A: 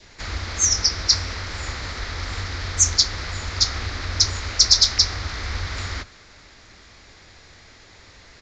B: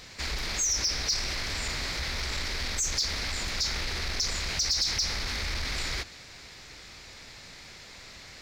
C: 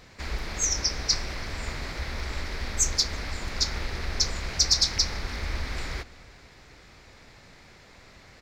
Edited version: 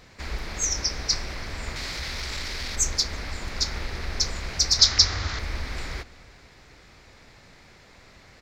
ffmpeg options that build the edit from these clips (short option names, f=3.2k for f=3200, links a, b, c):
-filter_complex "[2:a]asplit=3[a][b][c];[a]atrim=end=1.762[d];[1:a]atrim=start=1.758:end=2.762[e];[b]atrim=start=2.758:end=4.792[f];[0:a]atrim=start=4.788:end=5.392[g];[c]atrim=start=5.388[h];[d][e]acrossfade=d=0.004:c1=hsin:c2=hsin[i];[i][f]acrossfade=d=0.004:c1=hsin:c2=hsin[j];[j][g]acrossfade=d=0.004:c1=hsin:c2=hsin[k];[k][h]acrossfade=d=0.004:c1=hsin:c2=hsin"